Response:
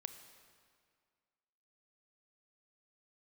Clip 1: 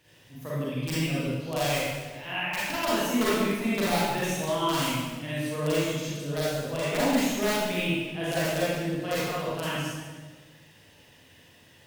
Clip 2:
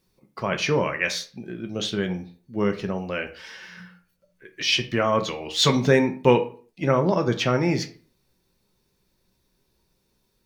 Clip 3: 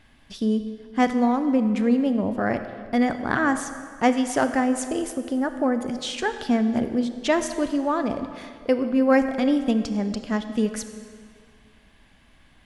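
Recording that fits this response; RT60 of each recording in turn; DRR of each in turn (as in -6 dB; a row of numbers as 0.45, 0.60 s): 3; 1.4, 0.45, 2.0 s; -9.5, 5.5, 9.0 dB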